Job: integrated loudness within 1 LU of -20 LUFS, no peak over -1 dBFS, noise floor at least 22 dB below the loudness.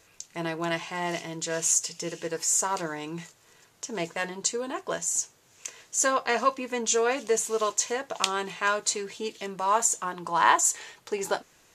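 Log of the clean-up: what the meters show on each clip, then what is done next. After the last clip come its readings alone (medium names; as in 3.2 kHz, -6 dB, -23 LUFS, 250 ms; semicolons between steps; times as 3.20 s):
loudness -27.0 LUFS; peak level -3.5 dBFS; loudness target -20.0 LUFS
-> trim +7 dB; peak limiter -1 dBFS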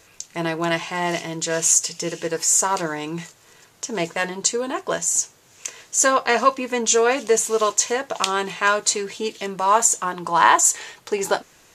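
loudness -20.5 LUFS; peak level -1.0 dBFS; noise floor -53 dBFS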